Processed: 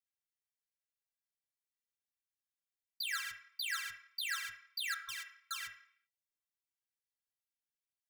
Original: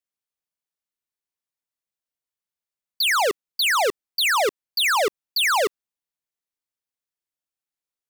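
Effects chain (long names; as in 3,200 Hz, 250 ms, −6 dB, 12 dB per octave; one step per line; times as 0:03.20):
elliptic band-stop filter 140–1,700 Hz, stop band 40 dB
brickwall limiter −25.5 dBFS, peak gain reduction 12 dB
stiff-string resonator 98 Hz, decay 0.23 s, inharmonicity 0.03
0:04.94–0:05.51: all-pass dispersion highs, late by 148 ms, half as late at 390 Hz
on a send: convolution reverb RT60 0.60 s, pre-delay 8 ms, DRR 3 dB
on the sum: level +1 dB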